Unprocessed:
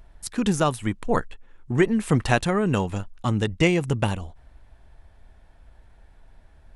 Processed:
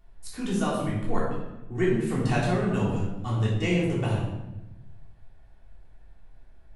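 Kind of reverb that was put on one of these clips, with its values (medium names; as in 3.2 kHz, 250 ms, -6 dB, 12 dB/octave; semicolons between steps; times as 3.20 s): simulated room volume 430 m³, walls mixed, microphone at 3.4 m; trim -14 dB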